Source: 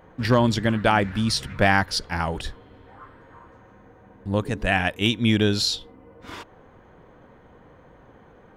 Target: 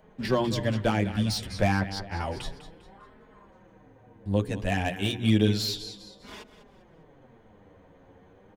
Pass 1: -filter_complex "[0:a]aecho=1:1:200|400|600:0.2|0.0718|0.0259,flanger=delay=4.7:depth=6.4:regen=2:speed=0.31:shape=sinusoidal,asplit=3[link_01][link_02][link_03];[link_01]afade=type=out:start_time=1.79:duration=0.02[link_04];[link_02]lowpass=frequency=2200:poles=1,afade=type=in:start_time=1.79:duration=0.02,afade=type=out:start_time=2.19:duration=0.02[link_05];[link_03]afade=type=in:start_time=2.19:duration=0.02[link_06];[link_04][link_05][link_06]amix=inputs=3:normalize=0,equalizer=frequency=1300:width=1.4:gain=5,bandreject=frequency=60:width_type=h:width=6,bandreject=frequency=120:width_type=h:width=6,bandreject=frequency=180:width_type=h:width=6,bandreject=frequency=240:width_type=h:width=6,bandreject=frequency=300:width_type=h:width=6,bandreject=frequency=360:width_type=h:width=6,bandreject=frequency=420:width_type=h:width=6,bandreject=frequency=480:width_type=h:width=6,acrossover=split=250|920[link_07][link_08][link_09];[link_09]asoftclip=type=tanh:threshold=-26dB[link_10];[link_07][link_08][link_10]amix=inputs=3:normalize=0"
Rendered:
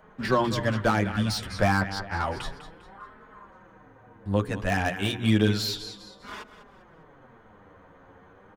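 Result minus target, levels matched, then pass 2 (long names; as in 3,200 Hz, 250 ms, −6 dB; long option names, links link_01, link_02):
1,000 Hz band +3.5 dB
-filter_complex "[0:a]aecho=1:1:200|400|600:0.2|0.0718|0.0259,flanger=delay=4.7:depth=6.4:regen=2:speed=0.31:shape=sinusoidal,asplit=3[link_01][link_02][link_03];[link_01]afade=type=out:start_time=1.79:duration=0.02[link_04];[link_02]lowpass=frequency=2200:poles=1,afade=type=in:start_time=1.79:duration=0.02,afade=type=out:start_time=2.19:duration=0.02[link_05];[link_03]afade=type=in:start_time=2.19:duration=0.02[link_06];[link_04][link_05][link_06]amix=inputs=3:normalize=0,equalizer=frequency=1300:width=1.4:gain=-6.5,bandreject=frequency=60:width_type=h:width=6,bandreject=frequency=120:width_type=h:width=6,bandreject=frequency=180:width_type=h:width=6,bandreject=frequency=240:width_type=h:width=6,bandreject=frequency=300:width_type=h:width=6,bandreject=frequency=360:width_type=h:width=6,bandreject=frequency=420:width_type=h:width=6,bandreject=frequency=480:width_type=h:width=6,acrossover=split=250|920[link_07][link_08][link_09];[link_09]asoftclip=type=tanh:threshold=-26dB[link_10];[link_07][link_08][link_10]amix=inputs=3:normalize=0"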